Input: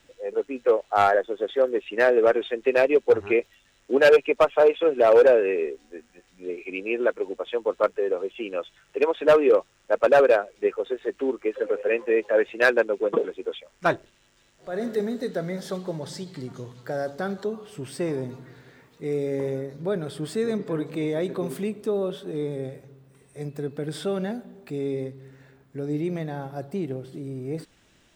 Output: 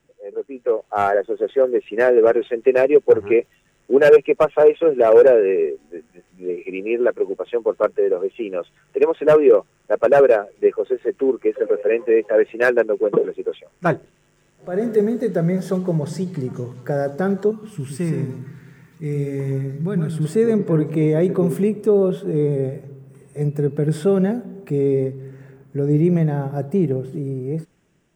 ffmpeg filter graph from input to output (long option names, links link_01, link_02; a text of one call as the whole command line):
ffmpeg -i in.wav -filter_complex "[0:a]asettb=1/sr,asplit=3[link_01][link_02][link_03];[link_01]atrim=end=17.514[link_04];[link_02]atrim=start=17.51:end=20.25,asetpts=PTS-STARTPTS,afade=type=in:duration=0.004:curve=qsin,afade=type=out:start_time=2.736:duration=0.004:curve=qsin,equalizer=frequency=540:width=0.91:gain=-14.5,aecho=1:1:118:0.473,atrim=end_sample=120834[link_05];[link_03]atrim=start=20.246[link_06];[link_04][link_05]acrossfade=duration=0.004:curve1=hsin:curve2=qsin[link_07];[link_07][link_06]acrossfade=duration=0.004:curve1=qsin:curve2=hsin,dynaudnorm=framelen=100:gausssize=17:maxgain=11.5dB,equalizer=frequency=160:width_type=o:width=0.67:gain=11,equalizer=frequency=400:width_type=o:width=0.67:gain=6,equalizer=frequency=4000:width_type=o:width=0.67:gain=-11,volume=-7dB" out.wav